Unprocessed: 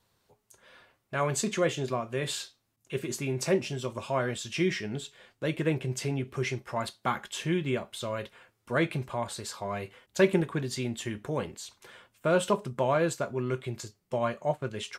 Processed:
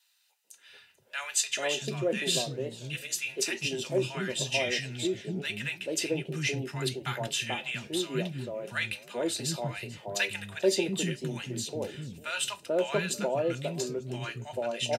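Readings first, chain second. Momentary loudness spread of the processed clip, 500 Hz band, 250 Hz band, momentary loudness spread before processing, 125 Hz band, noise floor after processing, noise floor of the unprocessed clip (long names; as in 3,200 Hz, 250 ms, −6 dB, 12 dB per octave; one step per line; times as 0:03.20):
8 LU, −1.5 dB, −3.0 dB, 10 LU, −3.0 dB, −63 dBFS, −76 dBFS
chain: high shelf with overshoot 1,900 Hz +6.5 dB, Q 1.5
notch comb filter 1,100 Hz
three-band delay without the direct sound highs, mids, lows 440/690 ms, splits 240/960 Hz
feedback echo with a swinging delay time 445 ms, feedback 39%, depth 175 cents, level −20 dB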